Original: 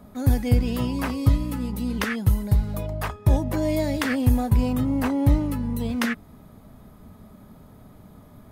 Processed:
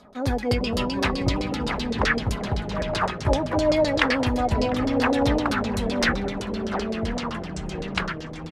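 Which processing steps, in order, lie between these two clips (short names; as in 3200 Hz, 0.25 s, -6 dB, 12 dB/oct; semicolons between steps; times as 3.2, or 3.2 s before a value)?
tone controls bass -11 dB, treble +10 dB; in parallel at -8.5 dB: bit-crush 6-bit; on the sum: echoes that change speed 0.396 s, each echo -4 st, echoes 3, each echo -6 dB; on a send: diffused feedback echo 1.055 s, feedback 42%, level -15 dB; on the sum: LFO low-pass saw down 7.8 Hz 460–5500 Hz; outdoor echo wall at 120 m, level -16 dB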